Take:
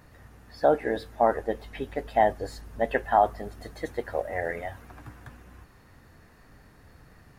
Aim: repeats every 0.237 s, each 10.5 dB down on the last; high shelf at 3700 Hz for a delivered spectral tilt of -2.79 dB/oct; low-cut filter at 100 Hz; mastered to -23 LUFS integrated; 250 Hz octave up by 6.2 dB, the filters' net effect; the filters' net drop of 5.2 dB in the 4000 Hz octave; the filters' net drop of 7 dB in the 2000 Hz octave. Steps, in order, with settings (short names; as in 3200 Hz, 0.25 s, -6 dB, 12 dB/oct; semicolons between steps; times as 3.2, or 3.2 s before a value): HPF 100 Hz; bell 250 Hz +8 dB; bell 2000 Hz -8.5 dB; high shelf 3700 Hz +7 dB; bell 4000 Hz -8.5 dB; feedback echo 0.237 s, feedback 30%, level -10.5 dB; gain +3.5 dB